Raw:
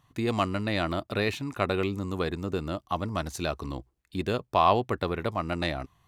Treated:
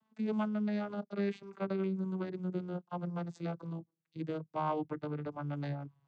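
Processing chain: vocoder on a gliding note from A3, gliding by -8 st; gain -6.5 dB

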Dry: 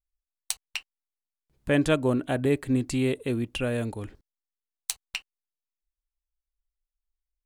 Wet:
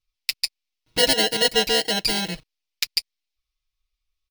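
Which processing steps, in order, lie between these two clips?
FFT order left unsorted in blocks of 64 samples; high shelf 11000 Hz -5.5 dB; speed mistake 45 rpm record played at 78 rpm; band shelf 3500 Hz +12 dB; comb 6.3 ms, depth 89%; gain +2 dB

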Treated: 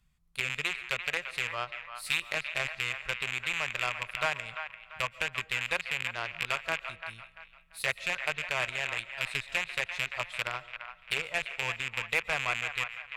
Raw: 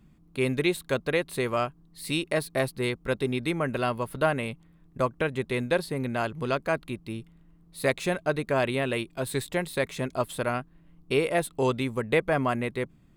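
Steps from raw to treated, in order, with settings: rattling part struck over -33 dBFS, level -17 dBFS; treble ducked by the level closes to 2400 Hz, closed at -22.5 dBFS; passive tone stack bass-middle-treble 10-0-10; added harmonics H 7 -22 dB, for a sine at -18.5 dBFS; band-limited delay 0.342 s, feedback 34%, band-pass 1500 Hz, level -7.5 dB; on a send at -19 dB: reverb RT60 0.55 s, pre-delay 0.1 s; on the sum: gain +5 dB

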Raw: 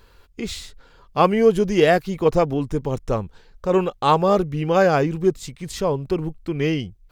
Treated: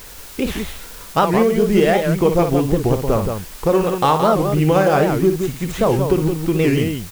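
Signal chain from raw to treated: median filter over 9 samples; compressor, threshold -21 dBFS, peak gain reduction 11 dB; requantised 8-bit, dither triangular; on a send: loudspeakers at several distances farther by 20 m -8 dB, 59 m -6 dB; on the sum: record warp 78 rpm, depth 250 cents; gain +8.5 dB

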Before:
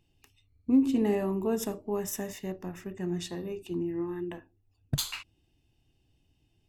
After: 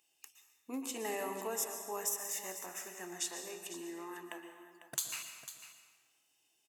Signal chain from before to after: HPF 850 Hz 12 dB/oct; resonant high shelf 5400 Hz +7.5 dB, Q 1.5; compressor 12:1, threshold -35 dBFS, peak gain reduction 14 dB; echo 0.499 s -12.5 dB; plate-style reverb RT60 1.3 s, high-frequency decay 0.8×, pre-delay 0.105 s, DRR 7 dB; gain +2 dB

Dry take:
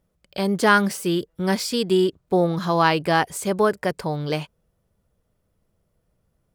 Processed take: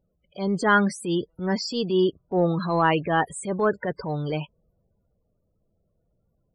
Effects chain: loudest bins only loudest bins 32; transient shaper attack -7 dB, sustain +2 dB; gain -1 dB

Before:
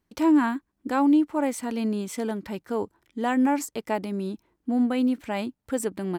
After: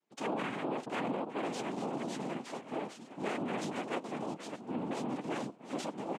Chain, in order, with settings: reverse delay 0.505 s, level -7.5 dB; on a send: swung echo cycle 1.218 s, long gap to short 3:1, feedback 41%, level -19 dB; on the sum: flange 0.91 Hz, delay 9.4 ms, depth 4.2 ms, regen -8%; soft clip -22.5 dBFS, distortion -13 dB; noise vocoder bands 4; limiter -22 dBFS, peak gain reduction 7.5 dB; harmoniser -12 st -2 dB; HPF 200 Hz 24 dB/oct; gain -4.5 dB

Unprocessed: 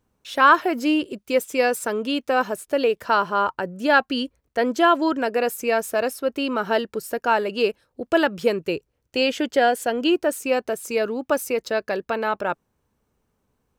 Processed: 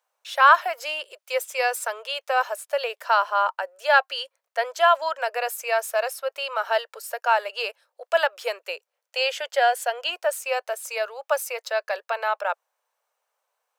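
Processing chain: steep high-pass 550 Hz 48 dB/oct

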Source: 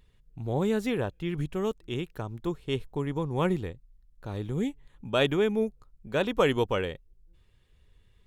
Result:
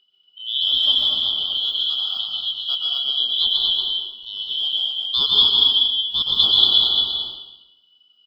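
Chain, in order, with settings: four-band scrambler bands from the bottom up 2413; careless resampling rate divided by 2×, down filtered, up zero stuff; bell 3600 Hz +12 dB 0.84 oct; spectral noise reduction 6 dB; air absorption 80 m; on a send: echo 0.234 s -3.5 dB; on the sum: plate-style reverb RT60 0.95 s, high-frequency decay 0.95×, pre-delay 0.11 s, DRR -2 dB; gain -5 dB

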